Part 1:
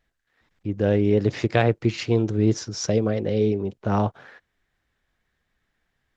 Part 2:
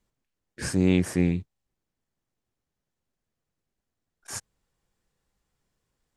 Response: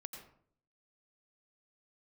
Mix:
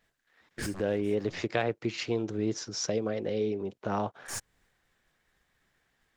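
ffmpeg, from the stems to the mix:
-filter_complex "[0:a]highpass=f=320:p=1,volume=1.33,asplit=2[s0][s1];[1:a]aeval=exprs='0.316*sin(PI/2*6.31*val(0)/0.316)':c=same,aeval=exprs='0.316*(cos(1*acos(clip(val(0)/0.316,-1,1)))-cos(1*PI/2))+0.0398*(cos(4*acos(clip(val(0)/0.316,-1,1)))-cos(4*PI/2))':c=same,agate=range=0.0224:threshold=0.00282:ratio=3:detection=peak,volume=0.188[s2];[s1]apad=whole_len=271790[s3];[s2][s3]sidechaincompress=threshold=0.0141:ratio=8:attack=12:release=234[s4];[s0][s4]amix=inputs=2:normalize=0,acompressor=threshold=0.00891:ratio=1.5"

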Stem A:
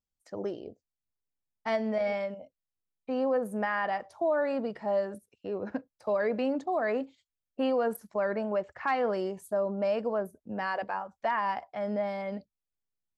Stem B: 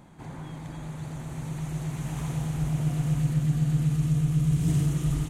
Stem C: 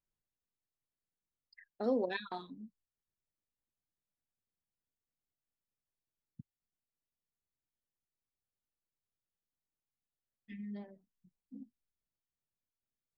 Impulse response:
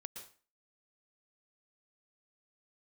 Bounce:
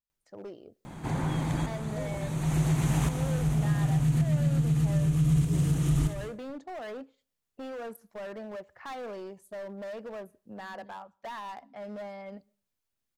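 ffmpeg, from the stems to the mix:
-filter_complex "[0:a]aeval=exprs='0.119*(cos(1*acos(clip(val(0)/0.119,-1,1)))-cos(1*PI/2))+0.00376*(cos(7*acos(clip(val(0)/0.119,-1,1)))-cos(7*PI/2))':c=same,asoftclip=type=hard:threshold=0.0316,volume=0.473,asplit=3[s0][s1][s2];[s1]volume=0.0841[s3];[1:a]acontrast=33,adelay=850,volume=1.26,asplit=2[s4][s5];[s5]volume=0.631[s6];[2:a]acompressor=mode=upward:threshold=0.00112:ratio=2.5,adelay=100,volume=0.266[s7];[s2]apad=whole_len=270840[s8];[s4][s8]sidechaincompress=threshold=0.00178:ratio=8:attack=7.2:release=267[s9];[3:a]atrim=start_sample=2205[s10];[s3][s6]amix=inputs=2:normalize=0[s11];[s11][s10]afir=irnorm=-1:irlink=0[s12];[s0][s9][s7][s12]amix=inputs=4:normalize=0,acompressor=threshold=0.0794:ratio=4"

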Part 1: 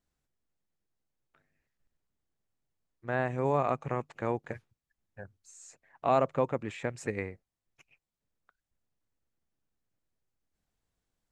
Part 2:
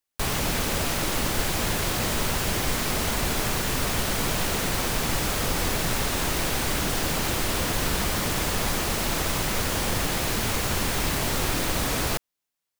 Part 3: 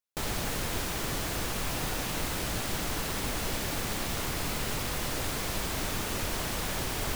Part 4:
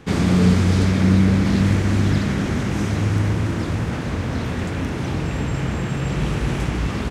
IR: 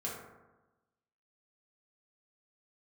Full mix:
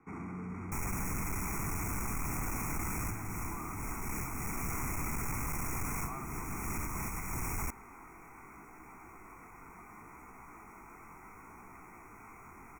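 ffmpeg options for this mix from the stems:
-filter_complex "[0:a]highpass=1100,volume=0.2,asplit=2[s0][s1];[1:a]asoftclip=type=tanh:threshold=0.0891,flanger=delay=15.5:depth=7.8:speed=0.7,adelay=1750,volume=0.126[s2];[2:a]adelay=550,volume=0.75[s3];[3:a]volume=0.141[s4];[s1]apad=whole_len=339668[s5];[s3][s5]sidechaincompress=threshold=0.00141:ratio=8:attack=37:release=308[s6];[s2][s4]amix=inputs=2:normalize=0,acrossover=split=260 2300:gain=0.224 1 0.178[s7][s8][s9];[s7][s8][s9]amix=inputs=3:normalize=0,alimiter=level_in=4.22:limit=0.0631:level=0:latency=1:release=29,volume=0.237,volume=1[s10];[s0][s6][s10]amix=inputs=3:normalize=0,aecho=1:1:0.9:0.89,asoftclip=type=tanh:threshold=0.0282,asuperstop=centerf=3800:order=12:qfactor=1.2"

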